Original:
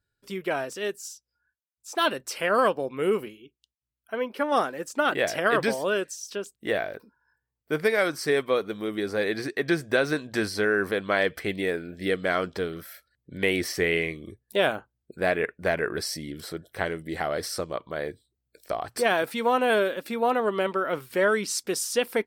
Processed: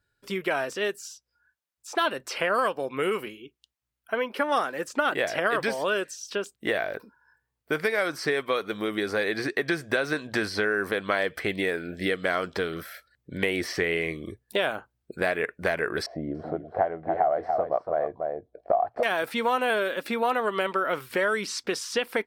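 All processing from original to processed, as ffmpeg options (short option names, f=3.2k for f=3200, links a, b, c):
-filter_complex "[0:a]asettb=1/sr,asplit=3[a][b][c];[a]atrim=end=16.064[d];[b]atrim=start=16.06:end=19.03,asetpts=PTS-STARTPTS,afade=t=in:d=0.004:c=qsin,afade=t=out:st=2.966:d=0.004:c=qsin,lowpass=f=710:t=q:w=6.6,aecho=1:1:286:0.376,atrim=end_sample=130977[e];[c]atrim=start=19.026[f];[d][e]acrossfade=d=0.004:c1=hsin:c2=qsin[g];[g][f]acrossfade=d=0.004:c1=qsin:c2=hsin,equalizer=f=1.2k:w=0.38:g=5,acrossover=split=1200|5200[h][i][j];[h]acompressor=threshold=-29dB:ratio=4[k];[i]acompressor=threshold=-31dB:ratio=4[l];[j]acompressor=threshold=-49dB:ratio=4[m];[k][l][m]amix=inputs=3:normalize=0,volume=2.5dB"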